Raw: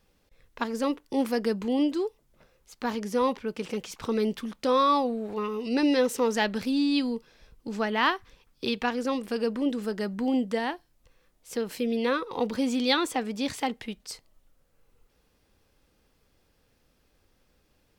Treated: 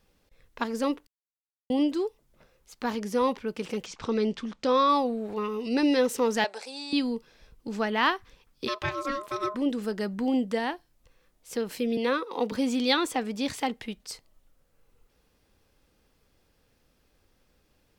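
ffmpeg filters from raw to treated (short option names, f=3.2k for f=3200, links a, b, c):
-filter_complex "[0:a]asettb=1/sr,asplit=3[a][b][c];[a]atrim=end=3.864[d];[b]atrim=start=3.86:end=4.89,asetpts=PTS-STARTPTS,afade=t=in:d=0.004:c=qsin,afade=t=out:st=1.026:d=0.004:c=qsin,lowpass=f=7.3k:w=0.5412,lowpass=f=7.3k:w=1.3066[e];[c]atrim=start=4.886[f];[d][e]acrossfade=d=0.004:c1=hsin:c2=qsin[g];[g][f]acrossfade=d=0.004:c1=qsin:c2=hsin,asettb=1/sr,asplit=3[h][i][j];[h]atrim=end=6.444[k];[i]atrim=start=6.44:end=6.93,asetpts=PTS-STARTPTS,afade=t=in:d=0.004:c=qsin,afade=t=out:st=0.486:d=0.004:c=qsin,highpass=f=500:w=0.5412,highpass=f=500:w=1.3066,equalizer=f=800:t=q:w=4:g=7,equalizer=f=1.2k:t=q:w=4:g=-6,equalizer=f=1.8k:t=q:w=4:g=-5,equalizer=f=3.1k:t=q:w=4:g=-8,equalizer=f=8.2k:t=q:w=4:g=8,lowpass=f=9.6k:w=0.5412,lowpass=f=9.6k:w=1.3066[l];[j]atrim=start=6.926[m];[k][l]acrossfade=d=0.004:c1=hsin:c2=qsin[n];[n][m]acrossfade=d=0.004:c1=qsin:c2=hsin,asplit=3[o][p][q];[o]afade=t=out:st=8.67:d=0.02[r];[p]aeval=exprs='val(0)*sin(2*PI*830*n/s)':c=same,afade=t=in:st=8.67:d=0.02,afade=t=out:st=9.54:d=0.02[s];[q]afade=t=in:st=9.54:d=0.02[t];[r][s][t]amix=inputs=3:normalize=0,asettb=1/sr,asplit=3[u][v][w];[u]atrim=end=11.974[x];[v]atrim=start=11.97:end=12.52,asetpts=PTS-STARTPTS,afade=t=in:d=0.004:c=qsin,afade=t=out:st=0.546:d=0.004:c=qsin,highpass=f=210:w=0.5412,highpass=f=210:w=1.3066[y];[w]atrim=start=12.516[z];[x][y]acrossfade=d=0.004:c1=hsin:c2=qsin[aa];[aa][z]acrossfade=d=0.004:c1=qsin:c2=hsin,asplit=3[ab][ac][ad];[ab]atrim=end=1.07,asetpts=PTS-STARTPTS,afade=t=out:st=1.066:d=0.004:c=hsin[ae];[ac]atrim=start=1.07:end=1.7,asetpts=PTS-STARTPTS,volume=0[af];[ad]atrim=start=1.7,asetpts=PTS-STARTPTS,afade=t=in:d=0.004:c=hsin[ag];[ae][af][ag]concat=n=3:v=0:a=1"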